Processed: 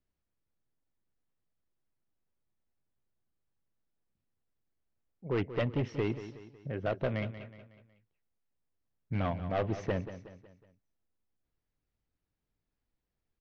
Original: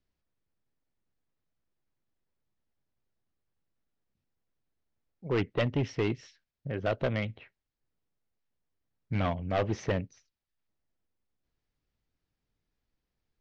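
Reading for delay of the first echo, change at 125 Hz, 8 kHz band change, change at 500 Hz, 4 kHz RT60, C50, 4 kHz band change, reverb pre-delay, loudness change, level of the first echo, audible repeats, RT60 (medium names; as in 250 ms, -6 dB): 184 ms, -2.5 dB, no reading, -2.5 dB, no reverb, no reverb, -6.0 dB, no reverb, -2.5 dB, -12.5 dB, 4, no reverb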